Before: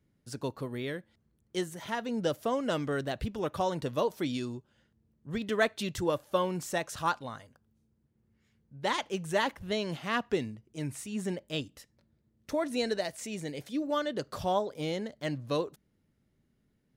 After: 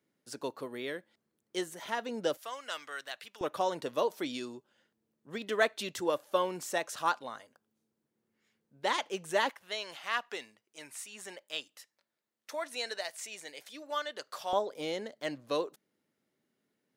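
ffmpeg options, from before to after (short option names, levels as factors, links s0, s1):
-af "asetnsamples=n=441:p=0,asendcmd='2.37 highpass f 1300;3.41 highpass f 340;9.5 highpass f 850;14.53 highpass f 340',highpass=330"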